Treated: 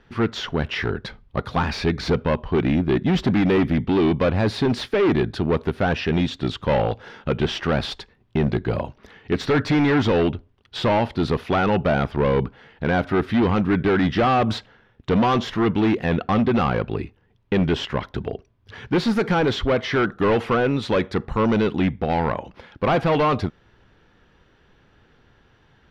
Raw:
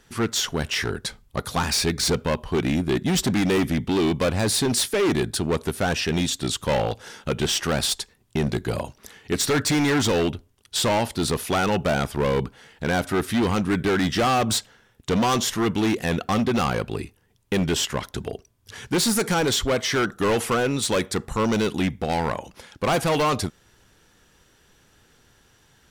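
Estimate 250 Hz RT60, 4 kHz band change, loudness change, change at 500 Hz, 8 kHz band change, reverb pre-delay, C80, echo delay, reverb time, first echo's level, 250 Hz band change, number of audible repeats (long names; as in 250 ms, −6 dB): no reverb audible, −5.0 dB, +1.5 dB, +2.5 dB, below −15 dB, no reverb audible, no reverb audible, no echo audible, no reverb audible, no echo audible, +3.0 dB, no echo audible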